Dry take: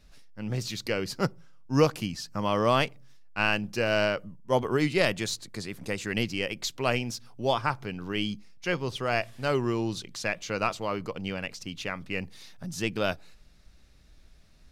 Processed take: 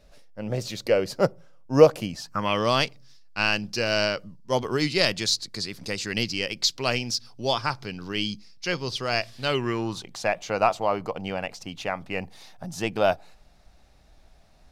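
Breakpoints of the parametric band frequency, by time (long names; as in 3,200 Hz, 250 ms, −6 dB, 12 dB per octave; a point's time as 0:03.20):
parametric band +13 dB 0.87 octaves
0:02.15 580 Hz
0:02.70 4,800 Hz
0:09.35 4,800 Hz
0:10.06 750 Hz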